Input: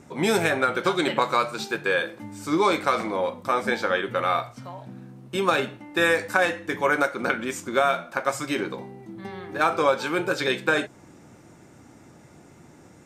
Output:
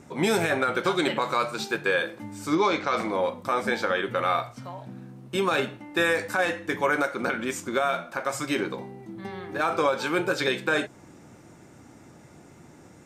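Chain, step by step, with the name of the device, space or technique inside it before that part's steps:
0:02.55–0:02.97: Chebyshev low-pass filter 6,400 Hz, order 4
clipper into limiter (hard clipping −6 dBFS, distortion −45 dB; brickwall limiter −13 dBFS, peak gain reduction 7 dB)

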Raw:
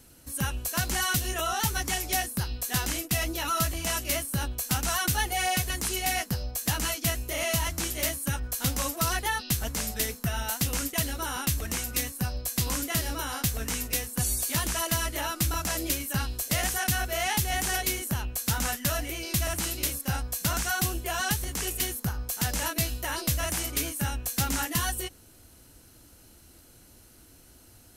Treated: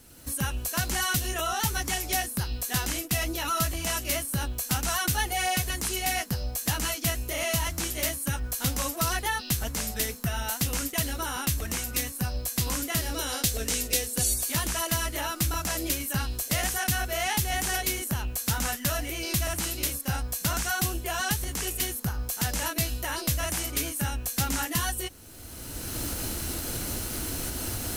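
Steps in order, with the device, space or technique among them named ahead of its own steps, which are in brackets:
cheap recorder with automatic gain (white noise bed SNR 36 dB; camcorder AGC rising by 22 dB per second)
0:13.14–0:14.34: octave-band graphic EQ 125/500/1,000/4,000/8,000 Hz −4/+7/−6/+5/+4 dB

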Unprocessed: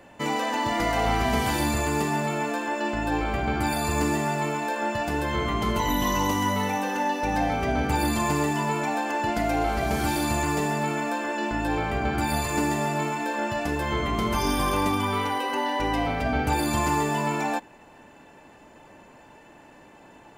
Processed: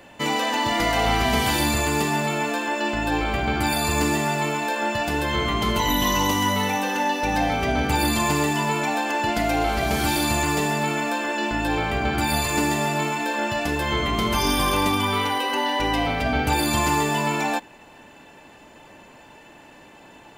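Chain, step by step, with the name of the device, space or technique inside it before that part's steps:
presence and air boost (parametric band 3,400 Hz +6 dB 1.3 octaves; high-shelf EQ 9,600 Hz +6 dB)
level +2 dB

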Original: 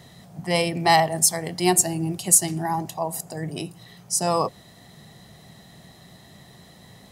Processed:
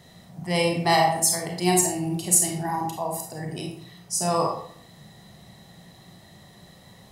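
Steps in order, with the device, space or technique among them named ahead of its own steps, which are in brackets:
bathroom (convolution reverb RT60 0.60 s, pre-delay 30 ms, DRR 0.5 dB)
level −4 dB

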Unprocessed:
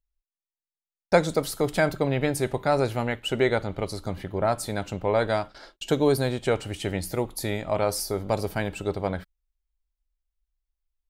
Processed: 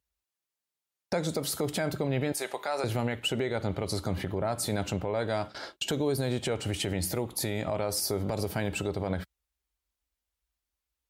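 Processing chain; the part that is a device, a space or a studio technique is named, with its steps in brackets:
dynamic equaliser 1,200 Hz, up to −3 dB, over −35 dBFS, Q 0.71
0:02.32–0:02.84: high-pass filter 710 Hz 12 dB per octave
podcast mastering chain (high-pass filter 64 Hz 24 dB per octave; de-essing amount 50%; downward compressor 3 to 1, threshold −29 dBFS, peak gain reduction 11 dB; brickwall limiter −26 dBFS, peak gain reduction 9.5 dB; level +6.5 dB; MP3 96 kbit/s 44,100 Hz)

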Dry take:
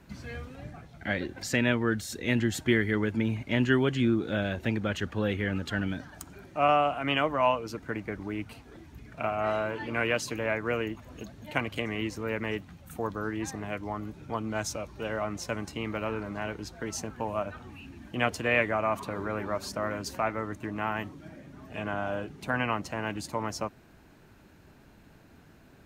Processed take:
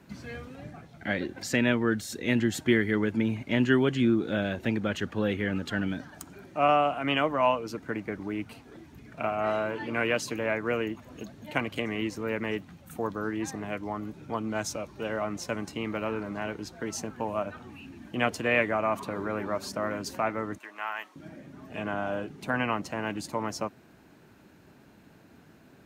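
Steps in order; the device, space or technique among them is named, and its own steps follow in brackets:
0:20.58–0:21.16: high-pass filter 970 Hz 12 dB per octave
filter by subtraction (in parallel: low-pass filter 210 Hz 12 dB per octave + polarity inversion)

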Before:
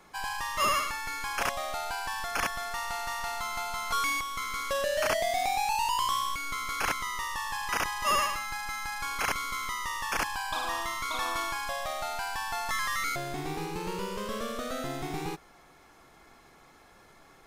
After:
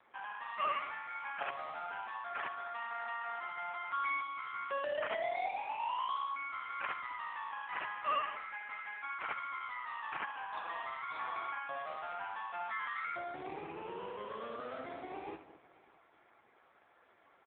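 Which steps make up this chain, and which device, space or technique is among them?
0:03.30–0:04.01: parametric band 94 Hz +4 dB 0.27 octaves
single-tap delay 73 ms −11.5 dB
feedback echo with a low-pass in the loop 211 ms, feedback 24%, low-pass 1,300 Hz, level −14 dB
0:13.03–0:13.71: dynamic equaliser 180 Hz, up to +7 dB, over −50 dBFS, Q 3.4
satellite phone (band-pass filter 330–3,100 Hz; single-tap delay 606 ms −22 dB; level −5 dB; AMR narrowband 5.9 kbit/s 8,000 Hz)

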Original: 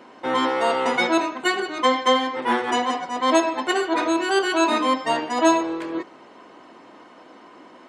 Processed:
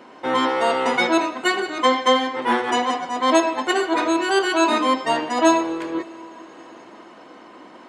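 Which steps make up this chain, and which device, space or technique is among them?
compressed reverb return (on a send at −5 dB: convolution reverb RT60 2.5 s, pre-delay 88 ms + downward compressor 5 to 1, threshold −34 dBFS, peak gain reduction 18 dB)
on the sum: level +1.5 dB

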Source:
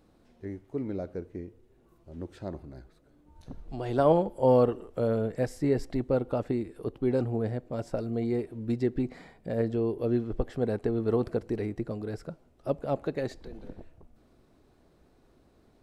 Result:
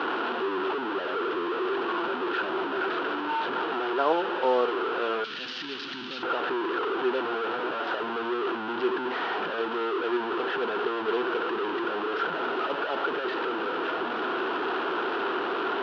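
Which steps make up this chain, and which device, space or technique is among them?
digital answering machine (band-pass filter 330–3,100 Hz; linear delta modulator 32 kbit/s, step −24 dBFS; loudspeaker in its box 350–3,200 Hz, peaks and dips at 380 Hz +7 dB, 580 Hz −7 dB, 970 Hz +5 dB, 1,400 Hz +10 dB, 2,100 Hz −9 dB, 3,000 Hz +4 dB)
0:05.24–0:06.23: drawn EQ curve 240 Hz 0 dB, 450 Hz −18 dB, 900 Hz −14 dB, 4,700 Hz +10 dB

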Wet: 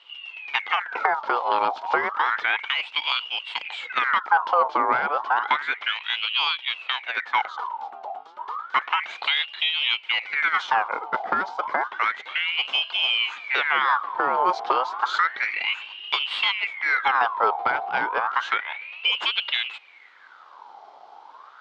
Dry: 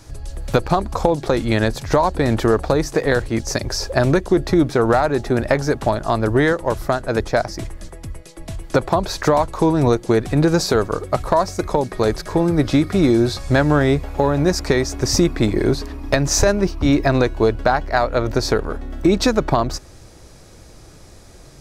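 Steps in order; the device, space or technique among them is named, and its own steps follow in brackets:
voice changer toy (ring modulator whose carrier an LFO sweeps 1,800 Hz, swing 60%, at 0.31 Hz; loudspeaker in its box 570–3,500 Hz, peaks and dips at 600 Hz −4 dB, 880 Hz +4 dB, 1,800 Hz −8 dB, 2,600 Hz −8 dB)

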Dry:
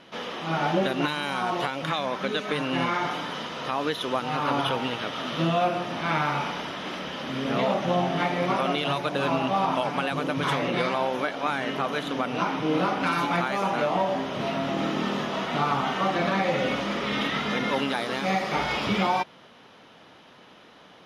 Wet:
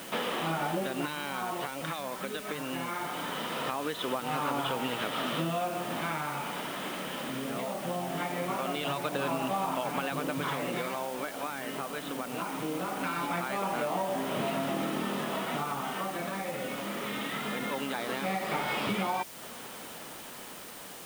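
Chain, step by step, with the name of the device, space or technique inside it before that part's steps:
medium wave at night (band-pass filter 120–4,000 Hz; downward compressor, threshold −36 dBFS, peak gain reduction 15 dB; amplitude tremolo 0.21 Hz, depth 42%; steady tone 9,000 Hz −63 dBFS; white noise bed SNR 14 dB)
level +7 dB

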